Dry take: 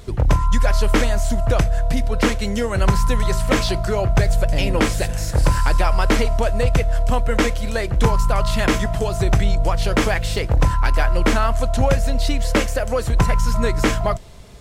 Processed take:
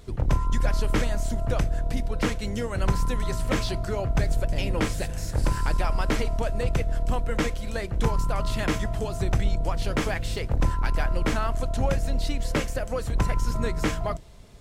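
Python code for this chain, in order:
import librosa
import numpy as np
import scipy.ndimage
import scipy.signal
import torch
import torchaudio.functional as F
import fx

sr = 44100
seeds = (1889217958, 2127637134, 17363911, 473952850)

y = fx.octave_divider(x, sr, octaves=1, level_db=-3.0)
y = y * librosa.db_to_amplitude(-8.5)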